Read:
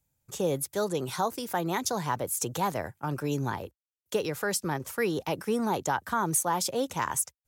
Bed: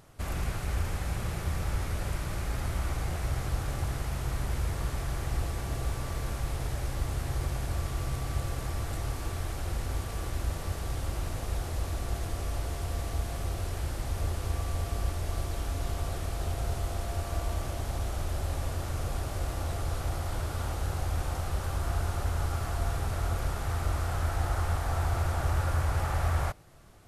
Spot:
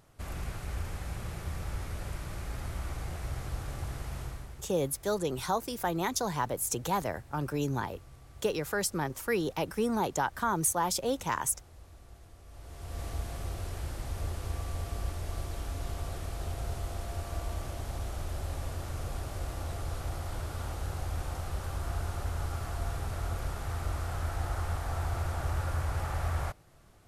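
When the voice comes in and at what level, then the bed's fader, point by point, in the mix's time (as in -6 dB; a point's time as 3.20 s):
4.30 s, -1.5 dB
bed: 4.22 s -5.5 dB
4.69 s -20 dB
12.44 s -20 dB
13.03 s -4 dB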